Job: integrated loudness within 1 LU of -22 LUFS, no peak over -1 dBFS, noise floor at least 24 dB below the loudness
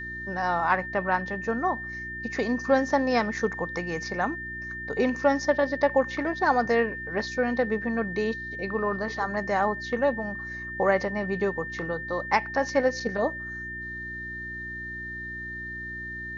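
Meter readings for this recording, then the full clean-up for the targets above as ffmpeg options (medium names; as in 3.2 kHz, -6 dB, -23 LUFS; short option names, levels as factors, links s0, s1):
hum 60 Hz; highest harmonic 360 Hz; hum level -41 dBFS; steady tone 1.8 kHz; tone level -34 dBFS; loudness -27.5 LUFS; peak level -8.0 dBFS; loudness target -22.0 LUFS
-> -af "bandreject=f=60:t=h:w=4,bandreject=f=120:t=h:w=4,bandreject=f=180:t=h:w=4,bandreject=f=240:t=h:w=4,bandreject=f=300:t=h:w=4,bandreject=f=360:t=h:w=4"
-af "bandreject=f=1800:w=30"
-af "volume=1.88"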